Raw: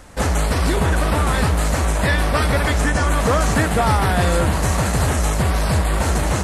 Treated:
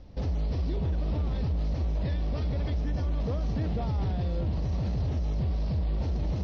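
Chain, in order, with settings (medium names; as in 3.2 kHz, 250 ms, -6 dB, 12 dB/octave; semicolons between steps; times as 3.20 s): FFT filter 120 Hz 0 dB, 610 Hz -8 dB, 1.5 kHz -21 dB, 5.7 kHz +5 dB, 9 kHz -27 dB; peak limiter -19 dBFS, peak gain reduction 9 dB; distance through air 330 m; trim -2.5 dB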